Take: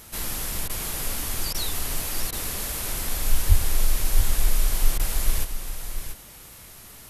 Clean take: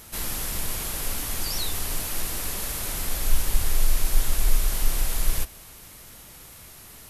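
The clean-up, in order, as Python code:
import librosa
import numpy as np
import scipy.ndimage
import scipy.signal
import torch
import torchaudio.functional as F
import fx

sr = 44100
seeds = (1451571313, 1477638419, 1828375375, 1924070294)

y = fx.highpass(x, sr, hz=140.0, slope=24, at=(3.48, 3.6), fade=0.02)
y = fx.fix_interpolate(y, sr, at_s=(0.68, 1.53, 2.31, 4.98), length_ms=14.0)
y = fx.fix_echo_inverse(y, sr, delay_ms=686, level_db=-8.5)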